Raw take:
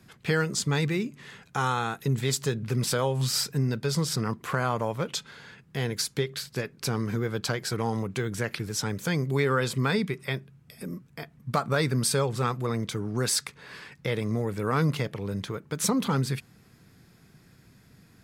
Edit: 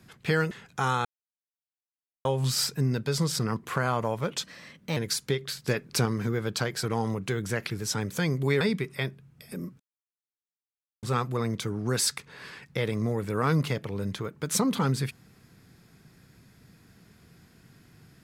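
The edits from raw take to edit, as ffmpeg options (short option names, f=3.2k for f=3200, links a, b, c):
-filter_complex "[0:a]asplit=11[a][b][c][d][e][f][g][h][i][j][k];[a]atrim=end=0.512[l];[b]atrim=start=1.278:end=1.82,asetpts=PTS-STARTPTS,afade=t=out:st=0.538:d=0.004:c=hsin[m];[c]atrim=start=1.82:end=3.02,asetpts=PTS-STARTPTS,volume=0[n];[d]atrim=start=3.02:end=5.204,asetpts=PTS-STARTPTS,afade=t=in:d=0.004:c=hsin[o];[e]atrim=start=5.2:end=5.85,asetpts=PTS-STARTPTS,asetrate=53361,aresample=44100,atrim=end_sample=23690,asetpts=PTS-STARTPTS[p];[f]atrim=start=5.846:end=6.562[q];[g]atrim=start=6.558:end=6.942,asetpts=PTS-STARTPTS,volume=4dB[r];[h]atrim=start=6.938:end=9.492[s];[i]atrim=start=9.898:end=11.09,asetpts=PTS-STARTPTS,afade=t=out:st=1.188:d=0.004:c=hsin[t];[j]atrim=start=11.09:end=12.32,asetpts=PTS-STARTPTS,volume=0[u];[k]atrim=start=12.32,asetpts=PTS-STARTPTS,afade=t=in:d=0.004:c=hsin[v];[m][n][o]concat=n=3:v=0:a=1[w];[l][w]acrossfade=d=0.004:c1=hsin:c2=hsin[x];[x][p]acrossfade=d=0.004:c1=hsin:c2=hsin[y];[y][q]acrossfade=d=0.004:c1=hsin:c2=hsin[z];[z][r]acrossfade=d=0.004:c1=hsin:c2=hsin[aa];[aa][s]acrossfade=d=0.004:c1=hsin:c2=hsin[ab];[t][u][v]concat=n=3:v=0:a=1[ac];[ab][ac]acrossfade=d=0.004:c1=hsin:c2=hsin"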